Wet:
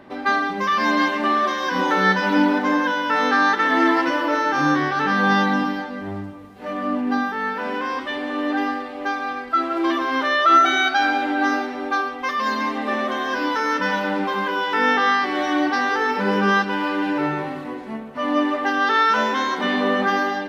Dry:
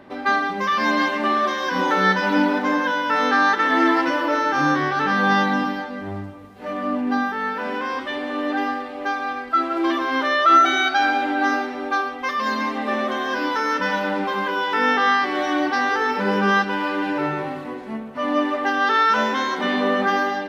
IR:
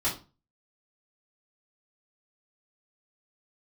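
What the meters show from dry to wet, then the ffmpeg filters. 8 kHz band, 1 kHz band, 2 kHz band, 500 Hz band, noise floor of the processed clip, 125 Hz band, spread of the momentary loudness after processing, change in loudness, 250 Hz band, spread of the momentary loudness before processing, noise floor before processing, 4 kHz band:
n/a, 0.0 dB, +0.5 dB, 0.0 dB, -33 dBFS, +1.0 dB, 9 LU, 0.0 dB, +1.0 dB, 9 LU, -33 dBFS, +0.5 dB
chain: -filter_complex "[0:a]asplit=2[a][b];[1:a]atrim=start_sample=2205[c];[b][c]afir=irnorm=-1:irlink=0,volume=-25.5dB[d];[a][d]amix=inputs=2:normalize=0"

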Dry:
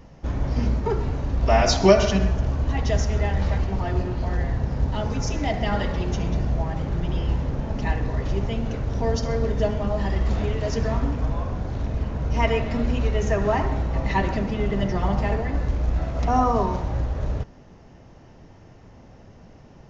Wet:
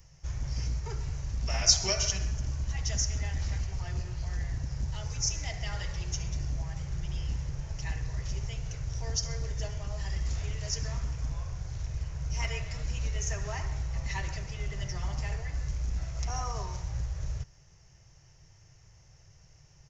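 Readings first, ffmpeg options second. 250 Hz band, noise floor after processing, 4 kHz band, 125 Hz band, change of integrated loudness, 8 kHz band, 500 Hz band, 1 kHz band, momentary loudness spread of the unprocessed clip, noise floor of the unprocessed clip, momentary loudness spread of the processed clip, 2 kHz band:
-19.5 dB, -58 dBFS, 0.0 dB, -9.0 dB, -9.0 dB, n/a, -20.0 dB, -17.0 dB, 7 LU, -48 dBFS, 7 LU, -9.0 dB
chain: -filter_complex "[0:a]aresample=22050,aresample=44100,firequalizer=gain_entry='entry(150,0);entry(220,-28);entry(340,-13);entry(2100,1);entry(3800,0);entry(5600,14)':delay=0.05:min_phase=1,acrossover=split=2200[a][b];[a]volume=18.5dB,asoftclip=hard,volume=-18.5dB[c];[c][b]amix=inputs=2:normalize=0,volume=-8dB"

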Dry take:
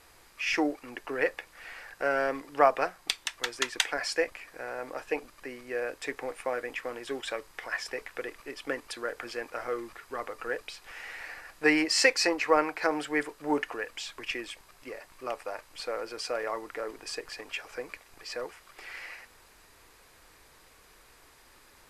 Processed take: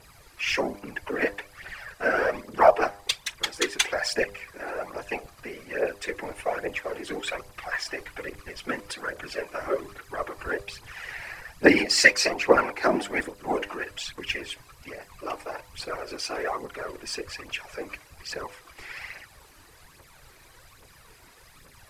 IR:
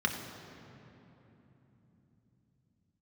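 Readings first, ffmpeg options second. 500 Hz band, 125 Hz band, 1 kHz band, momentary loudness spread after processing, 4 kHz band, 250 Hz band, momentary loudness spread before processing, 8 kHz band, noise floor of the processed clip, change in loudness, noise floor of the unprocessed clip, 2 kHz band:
+4.0 dB, +9.5 dB, +3.5 dB, 19 LU, +4.0 dB, +3.0 dB, 18 LU, +4.0 dB, -54 dBFS, +4.0 dB, -58 dBFS, +5.0 dB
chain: -af "aphaser=in_gain=1:out_gain=1:delay=3.4:decay=0.64:speed=1.2:type=triangular,afftfilt=real='hypot(re,im)*cos(2*PI*random(0))':imag='hypot(re,im)*sin(2*PI*random(1))':win_size=512:overlap=0.75,bandreject=f=100.4:t=h:w=4,bandreject=f=200.8:t=h:w=4,bandreject=f=301.2:t=h:w=4,bandreject=f=401.6:t=h:w=4,bandreject=f=502:t=h:w=4,bandreject=f=602.4:t=h:w=4,bandreject=f=702.8:t=h:w=4,bandreject=f=803.2:t=h:w=4,bandreject=f=903.6:t=h:w=4,bandreject=f=1.004k:t=h:w=4,volume=7.5dB"

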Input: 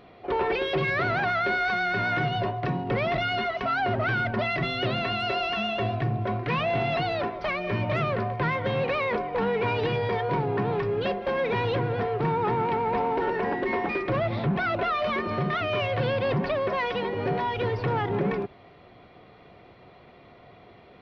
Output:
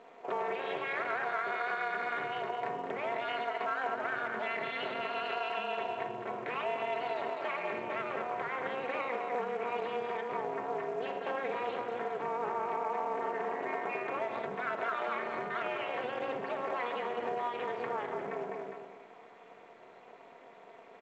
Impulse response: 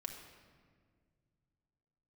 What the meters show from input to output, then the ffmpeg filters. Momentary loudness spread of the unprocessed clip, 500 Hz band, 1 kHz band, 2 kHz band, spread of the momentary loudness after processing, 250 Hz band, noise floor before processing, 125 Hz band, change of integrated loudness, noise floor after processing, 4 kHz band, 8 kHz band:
3 LU, -8.5 dB, -6.5 dB, -8.5 dB, 10 LU, -15.0 dB, -52 dBFS, -27.0 dB, -9.0 dB, -55 dBFS, -12.0 dB, n/a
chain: -filter_complex "[0:a]acontrast=26,aecho=1:1:203|406|609|812:0.398|0.151|0.0575|0.0218[a];[1:a]atrim=start_sample=2205,afade=t=out:st=0.17:d=0.01,atrim=end_sample=7938[b];[a][b]afir=irnorm=-1:irlink=0,acompressor=threshold=-26dB:ratio=6,tremolo=f=250:d=0.947,highpass=410,lowpass=2.5k" -ar 16000 -c:a pcm_mulaw

